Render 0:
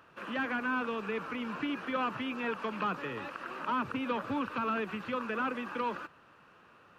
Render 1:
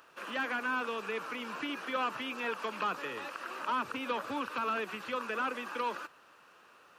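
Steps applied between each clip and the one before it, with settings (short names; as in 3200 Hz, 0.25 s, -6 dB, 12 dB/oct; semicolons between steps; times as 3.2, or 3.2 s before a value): tone controls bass -13 dB, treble +10 dB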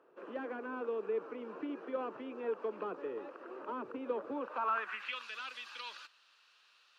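band-pass sweep 400 Hz -> 4000 Hz, 4.33–5.27; gain +5 dB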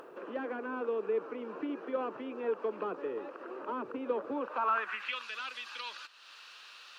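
upward compressor, threshold -44 dBFS; gain +3.5 dB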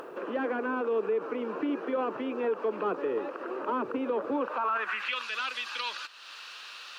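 limiter -29 dBFS, peak gain reduction 10 dB; gain +7.5 dB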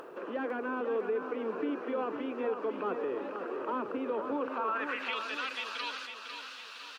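feedback echo 0.502 s, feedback 48%, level -7.5 dB; gain -4 dB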